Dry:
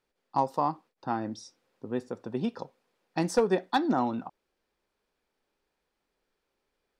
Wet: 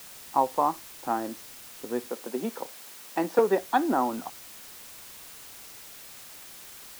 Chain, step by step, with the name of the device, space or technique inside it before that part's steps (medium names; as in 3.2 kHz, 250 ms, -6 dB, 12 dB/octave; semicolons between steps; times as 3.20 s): wax cylinder (band-pass 290–2100 Hz; wow and flutter; white noise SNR 15 dB); 2.06–3.39 s: high-pass 180 Hz 24 dB/octave; trim +3.5 dB